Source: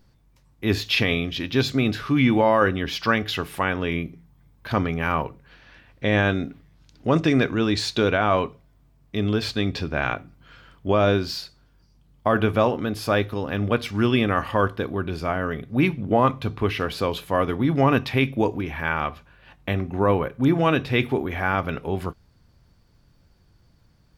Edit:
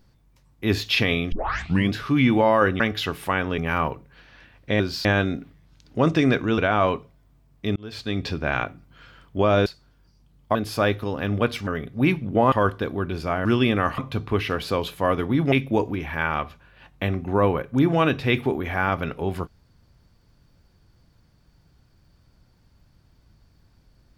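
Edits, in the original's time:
0:01.32: tape start 0.61 s
0:02.80–0:03.11: remove
0:03.89–0:04.92: remove
0:07.67–0:08.08: remove
0:09.26–0:09.77: fade in
0:11.16–0:11.41: move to 0:06.14
0:12.30–0:12.85: remove
0:13.97–0:14.50: swap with 0:15.43–0:16.28
0:17.82–0:18.18: remove

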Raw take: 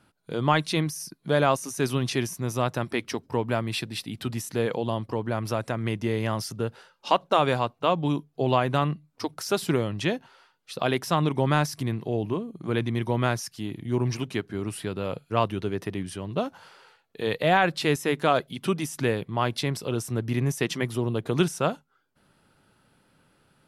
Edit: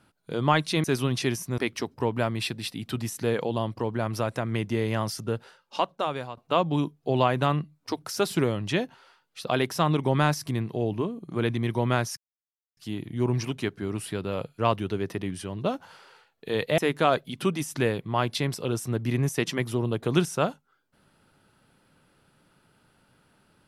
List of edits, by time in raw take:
0:00.84–0:01.75: remove
0:02.49–0:02.90: remove
0:06.64–0:07.69: fade out, to −14.5 dB
0:13.49: splice in silence 0.60 s
0:17.50–0:18.01: remove

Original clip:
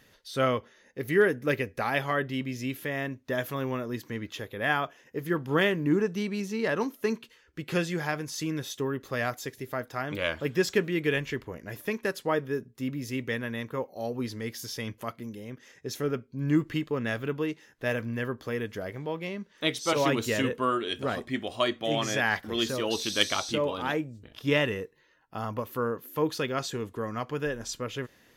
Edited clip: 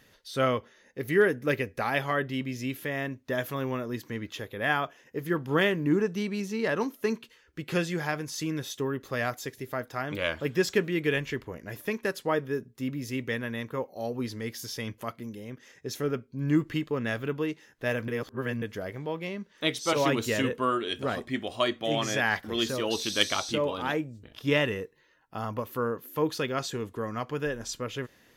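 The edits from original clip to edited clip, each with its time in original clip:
0:18.08–0:18.62: reverse

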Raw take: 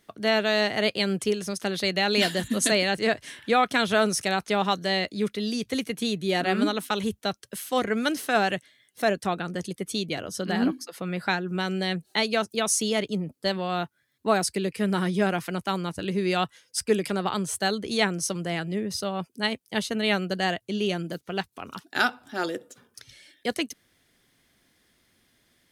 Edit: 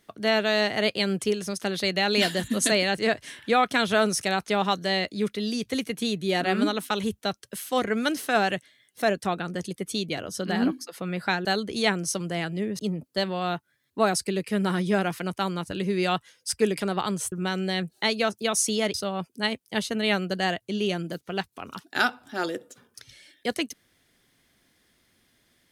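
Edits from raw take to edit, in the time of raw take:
0:11.45–0:13.07: swap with 0:17.60–0:18.94

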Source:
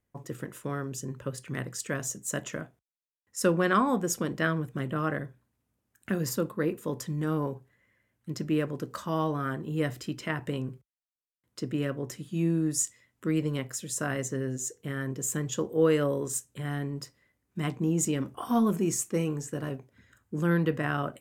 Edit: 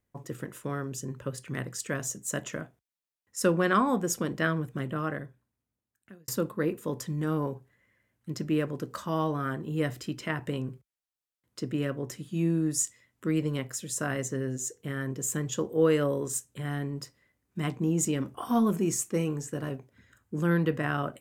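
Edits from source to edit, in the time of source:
0:04.70–0:06.28: fade out linear

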